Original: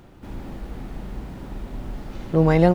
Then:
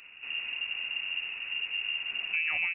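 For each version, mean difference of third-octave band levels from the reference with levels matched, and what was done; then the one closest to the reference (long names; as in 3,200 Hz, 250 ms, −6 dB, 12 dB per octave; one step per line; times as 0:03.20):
14.5 dB: downward compressor 4 to 1, threshold −26 dBFS, peak gain reduction 13 dB
voice inversion scrambler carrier 2,800 Hz
level −3.5 dB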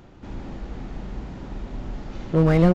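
1.5 dB: downsampling to 16,000 Hz
slew-rate limiting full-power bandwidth 93 Hz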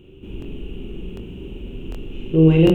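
7.0 dB: drawn EQ curve 270 Hz 0 dB, 390 Hz +8 dB, 670 Hz −15 dB, 2,000 Hz −14 dB, 2,800 Hz +13 dB, 4,600 Hz −23 dB, 6,600 Hz −12 dB
on a send: flutter between parallel walls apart 7.5 metres, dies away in 0.59 s
on the sum: regular buffer underruns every 0.75 s, samples 1,024, repeat, from 0:00.40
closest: second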